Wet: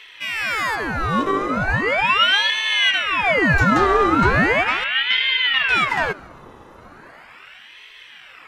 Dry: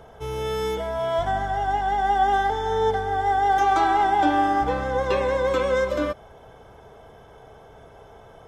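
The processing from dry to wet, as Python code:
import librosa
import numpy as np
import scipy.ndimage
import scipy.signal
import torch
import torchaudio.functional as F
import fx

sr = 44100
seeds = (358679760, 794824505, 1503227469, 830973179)

p1 = fx.lowpass(x, sr, hz=1200.0, slope=12, at=(4.84, 5.69))
p2 = p1 + fx.echo_feedback(p1, sr, ms=142, feedback_pct=59, wet_db=-23.0, dry=0)
p3 = fx.ring_lfo(p2, sr, carrier_hz=1500.0, swing_pct=75, hz=0.38)
y = p3 * librosa.db_to_amplitude(6.5)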